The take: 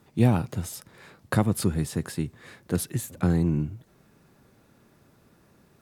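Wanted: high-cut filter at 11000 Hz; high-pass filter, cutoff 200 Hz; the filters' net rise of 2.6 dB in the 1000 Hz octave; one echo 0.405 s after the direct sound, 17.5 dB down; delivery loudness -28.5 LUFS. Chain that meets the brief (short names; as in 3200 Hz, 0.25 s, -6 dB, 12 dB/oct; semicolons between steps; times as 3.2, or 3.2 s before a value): HPF 200 Hz; LPF 11000 Hz; bell 1000 Hz +3.5 dB; echo 0.405 s -17.5 dB; gain +1.5 dB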